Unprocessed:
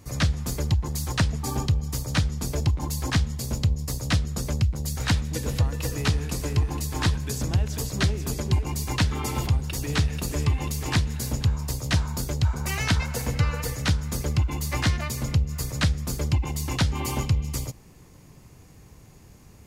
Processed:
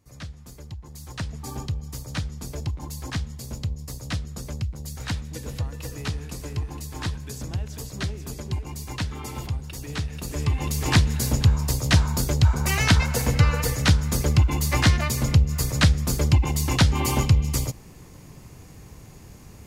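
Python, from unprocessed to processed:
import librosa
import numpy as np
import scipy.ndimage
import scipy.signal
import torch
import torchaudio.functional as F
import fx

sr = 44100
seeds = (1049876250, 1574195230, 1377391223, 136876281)

y = fx.gain(x, sr, db=fx.line((0.76, -15.0), (1.42, -6.0), (10.07, -6.0), (10.9, 5.0)))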